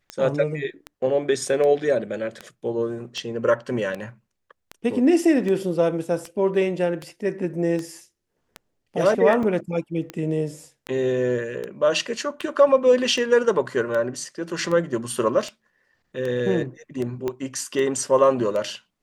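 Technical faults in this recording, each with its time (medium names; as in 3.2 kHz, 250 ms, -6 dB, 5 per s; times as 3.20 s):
tick 78 rpm -17 dBFS
9.43 s: dropout 3 ms
17.28 s: pop -14 dBFS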